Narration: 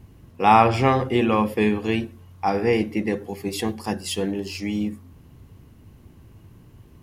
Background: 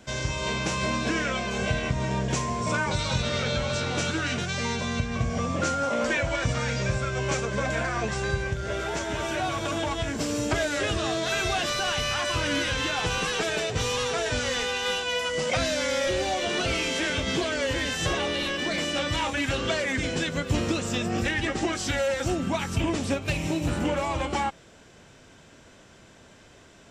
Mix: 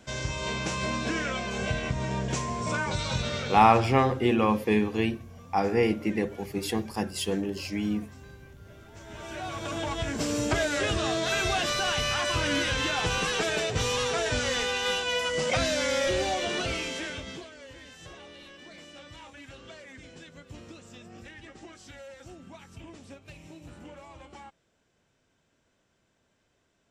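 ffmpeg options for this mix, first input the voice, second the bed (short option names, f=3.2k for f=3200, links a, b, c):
-filter_complex "[0:a]adelay=3100,volume=-3.5dB[a];[1:a]volume=19.5dB,afade=t=out:st=3.25:d=0.64:silence=0.1,afade=t=in:st=8.93:d=1.35:silence=0.0749894,afade=t=out:st=16.19:d=1.32:silence=0.105925[b];[a][b]amix=inputs=2:normalize=0"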